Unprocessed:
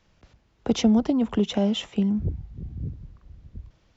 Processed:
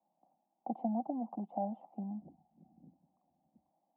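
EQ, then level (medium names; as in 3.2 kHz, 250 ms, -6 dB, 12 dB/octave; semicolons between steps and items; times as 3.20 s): high-pass 160 Hz 24 dB/octave; four-pole ladder low-pass 820 Hz, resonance 80%; static phaser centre 430 Hz, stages 6; -4.0 dB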